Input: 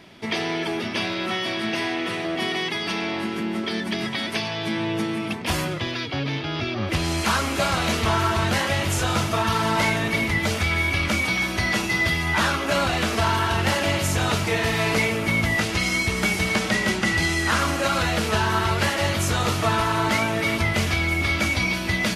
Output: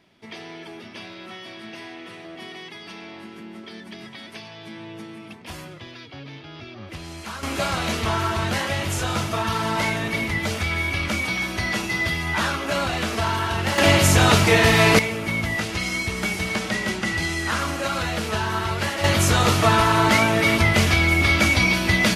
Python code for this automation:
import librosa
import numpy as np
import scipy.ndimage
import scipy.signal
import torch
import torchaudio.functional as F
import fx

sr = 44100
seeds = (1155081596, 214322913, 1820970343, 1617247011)

y = fx.gain(x, sr, db=fx.steps((0.0, -12.5), (7.43, -2.0), (13.78, 7.0), (14.99, -3.0), (19.04, 4.5)))